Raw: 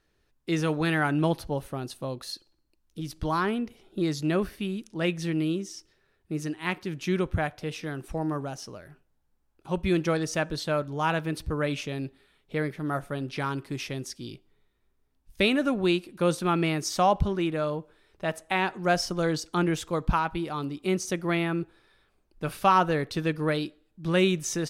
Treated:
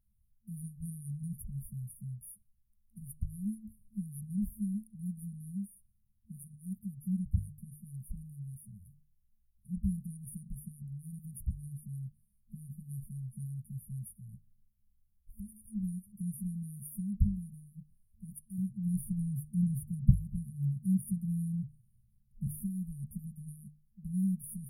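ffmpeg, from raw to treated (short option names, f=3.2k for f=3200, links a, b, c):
-filter_complex "[0:a]asplit=3[a][b][c];[a]afade=t=out:st=14.15:d=0.02[d];[b]acompressor=threshold=-37dB:ratio=2.5:attack=3.2:release=140:knee=1:detection=peak,afade=t=in:st=14.15:d=0.02,afade=t=out:st=15.48:d=0.02[e];[c]afade=t=in:st=15.48:d=0.02[f];[d][e][f]amix=inputs=3:normalize=0,asettb=1/sr,asplit=3[g][h][i];[g]atrim=end=18.584[j];[h]atrim=start=18.58:end=22.47,asetpts=PTS-STARTPTS,afade=t=in:d=0.004:c=qsin,afade=t=out:st=3.886:d=0.004:c=qsin,equalizer=f=130:t=o:w=0.77:g=14[k];[i]atrim=start=22.466[l];[j][k]acrossfade=d=0.004:c1=hsin:c2=qsin[m];[m][l]acrossfade=d=0.004:c1=qsin:c2=hsin,bandreject=f=50:t=h:w=6,bandreject=f=100:t=h:w=6,bandreject=f=150:t=h:w=6,afftfilt=real='re*(1-between(b*sr/4096,220,9300))':imag='im*(1-between(b*sr/4096,220,9300))':win_size=4096:overlap=0.75,equalizer=f=160:t=o:w=0.29:g=-13.5,volume=1.5dB"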